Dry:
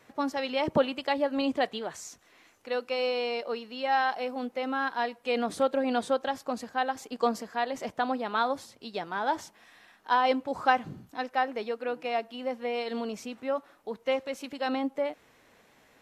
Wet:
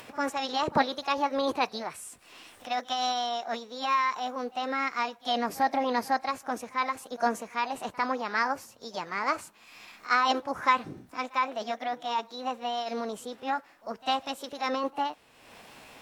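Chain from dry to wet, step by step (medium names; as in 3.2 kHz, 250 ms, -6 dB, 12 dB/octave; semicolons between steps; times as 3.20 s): formant shift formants +5 st; pre-echo 51 ms -23 dB; upward compressor, threshold -39 dBFS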